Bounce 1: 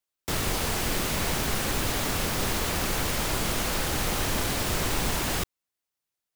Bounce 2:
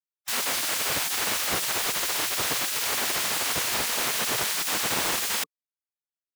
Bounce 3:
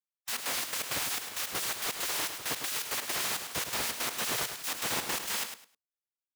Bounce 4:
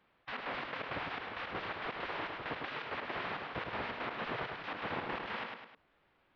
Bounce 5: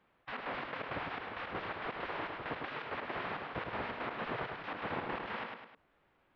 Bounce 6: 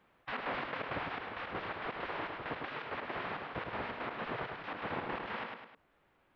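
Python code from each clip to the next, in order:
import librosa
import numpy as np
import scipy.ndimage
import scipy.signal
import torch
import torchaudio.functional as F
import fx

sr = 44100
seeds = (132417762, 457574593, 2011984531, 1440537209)

y1 = fx.spec_gate(x, sr, threshold_db=-15, keep='weak')
y1 = F.gain(torch.from_numpy(y1), 4.5).numpy()
y2 = fx.step_gate(y1, sr, bpm=165, pattern='x..x.xx.x.xx', floor_db=-12.0, edge_ms=4.5)
y2 = fx.echo_feedback(y2, sr, ms=104, feedback_pct=21, wet_db=-8.5)
y2 = F.gain(torch.from_numpy(y2), -5.5).numpy()
y3 = scipy.ndimage.gaussian_filter1d(y2, 3.5, mode='constant')
y3 = fx.env_flatten(y3, sr, amount_pct=50)
y3 = F.gain(torch.from_numpy(y3), -2.0).numpy()
y4 = fx.high_shelf(y3, sr, hz=3300.0, db=-8.5)
y4 = F.gain(torch.from_numpy(y4), 1.0).numpy()
y5 = fx.rider(y4, sr, range_db=10, speed_s=2.0)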